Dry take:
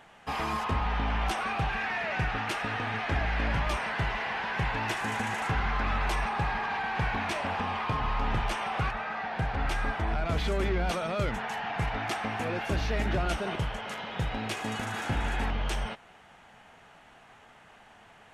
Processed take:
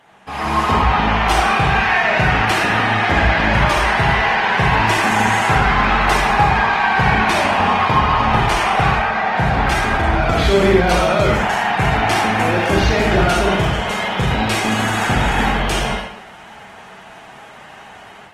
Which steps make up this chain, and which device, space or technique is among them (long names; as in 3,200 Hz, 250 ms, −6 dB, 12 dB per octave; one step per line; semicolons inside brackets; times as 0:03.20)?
far-field microphone of a smart speaker (convolution reverb RT60 0.75 s, pre-delay 32 ms, DRR −1 dB; high-pass filter 91 Hz 6 dB per octave; automatic gain control gain up to 9 dB; level +3.5 dB; Opus 20 kbit/s 48,000 Hz)